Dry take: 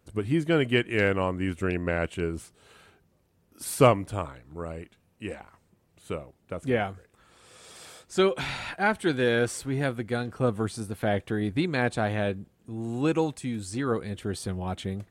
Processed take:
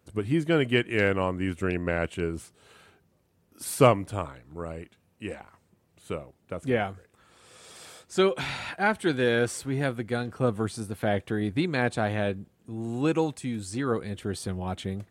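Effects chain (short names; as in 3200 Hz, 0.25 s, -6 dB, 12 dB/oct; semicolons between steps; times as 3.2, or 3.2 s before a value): HPF 59 Hz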